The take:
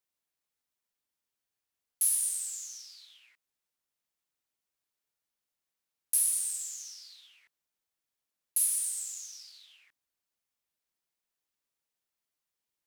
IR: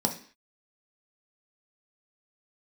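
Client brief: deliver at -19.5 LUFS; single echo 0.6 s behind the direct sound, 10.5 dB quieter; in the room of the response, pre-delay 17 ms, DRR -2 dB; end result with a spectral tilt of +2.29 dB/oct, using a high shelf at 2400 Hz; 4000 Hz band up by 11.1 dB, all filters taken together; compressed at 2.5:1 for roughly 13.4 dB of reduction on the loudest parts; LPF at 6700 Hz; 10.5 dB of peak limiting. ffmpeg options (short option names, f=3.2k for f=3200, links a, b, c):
-filter_complex "[0:a]lowpass=6.7k,highshelf=f=2.4k:g=7.5,equalizer=f=4k:t=o:g=8,acompressor=threshold=-46dB:ratio=2.5,alimiter=level_in=11dB:limit=-24dB:level=0:latency=1,volume=-11dB,aecho=1:1:600:0.299,asplit=2[a][b];[1:a]atrim=start_sample=2205,adelay=17[c];[b][c]afir=irnorm=-1:irlink=0,volume=-6.5dB[d];[a][d]amix=inputs=2:normalize=0,volume=21dB"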